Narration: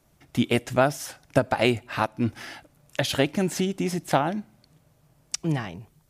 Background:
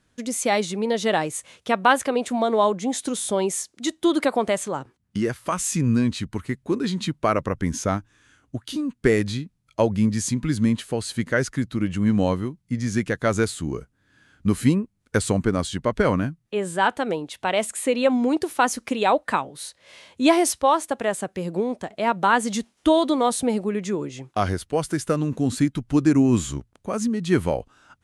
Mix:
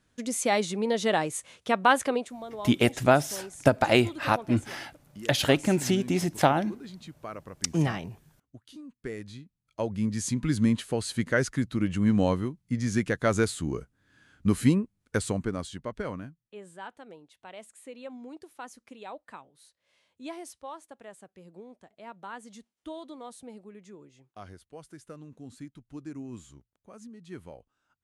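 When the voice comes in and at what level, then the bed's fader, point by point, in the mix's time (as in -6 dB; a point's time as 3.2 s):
2.30 s, +0.5 dB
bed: 2.14 s -3.5 dB
2.37 s -18.5 dB
9.15 s -18.5 dB
10.46 s -3 dB
14.82 s -3 dB
16.93 s -22.5 dB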